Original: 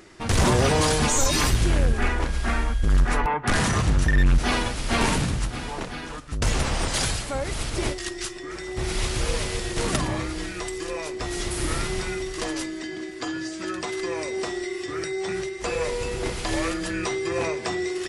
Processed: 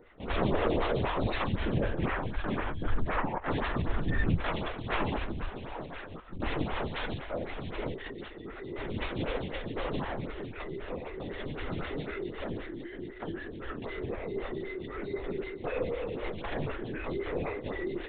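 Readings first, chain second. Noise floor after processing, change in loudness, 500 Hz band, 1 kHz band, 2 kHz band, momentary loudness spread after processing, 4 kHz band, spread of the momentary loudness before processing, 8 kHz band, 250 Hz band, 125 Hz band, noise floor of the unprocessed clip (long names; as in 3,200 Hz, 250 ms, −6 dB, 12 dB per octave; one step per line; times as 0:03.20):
−44 dBFS, −9.0 dB, −6.0 dB, −7.5 dB, −9.0 dB, 10 LU, −14.0 dB, 11 LU, below −40 dB, −7.0 dB, −9.5 dB, −35 dBFS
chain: parametric band 450 Hz +3.5 dB 0.36 octaves
linear-prediction vocoder at 8 kHz whisper
phaser with staggered stages 3.9 Hz
level −5 dB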